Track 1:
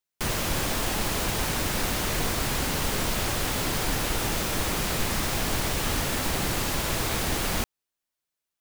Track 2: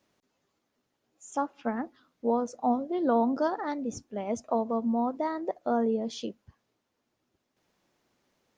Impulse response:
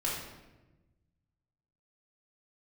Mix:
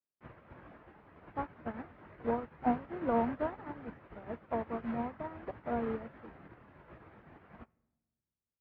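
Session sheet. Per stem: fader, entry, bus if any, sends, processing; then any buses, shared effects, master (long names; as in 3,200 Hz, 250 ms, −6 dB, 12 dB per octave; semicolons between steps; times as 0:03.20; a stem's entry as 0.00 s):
−2.0 dB, 0.00 s, send −14.5 dB, reverb reduction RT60 0.9 s; high-pass filter 76 Hz 12 dB per octave; micro pitch shift up and down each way 50 cents
−3.0 dB, 0.00 s, no send, no processing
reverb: on, RT60 1.1 s, pre-delay 3 ms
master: low-pass filter 1,900 Hz 24 dB per octave; expander for the loud parts 2.5 to 1, over −43 dBFS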